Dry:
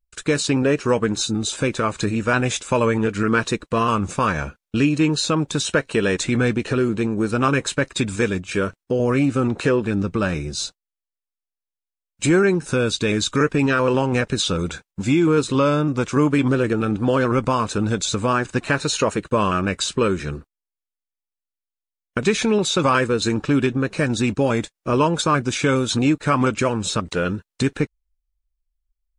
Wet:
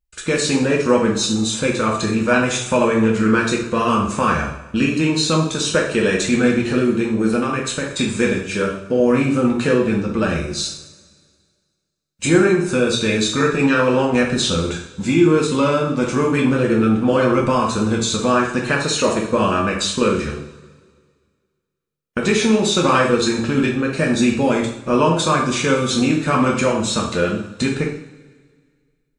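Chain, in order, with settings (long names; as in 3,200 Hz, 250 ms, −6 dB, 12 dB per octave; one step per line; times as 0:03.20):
0:07.35–0:07.97: downward compressor, threshold −20 dBFS, peak gain reduction 7 dB
coupled-rooms reverb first 0.59 s, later 1.9 s, from −18 dB, DRR −2 dB
level −1 dB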